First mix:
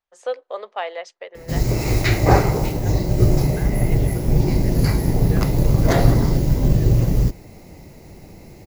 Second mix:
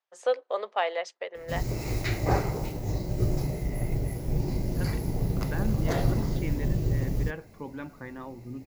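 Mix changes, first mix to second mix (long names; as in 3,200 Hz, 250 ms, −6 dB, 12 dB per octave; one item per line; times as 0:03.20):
second voice: entry +1.95 s
background −11.0 dB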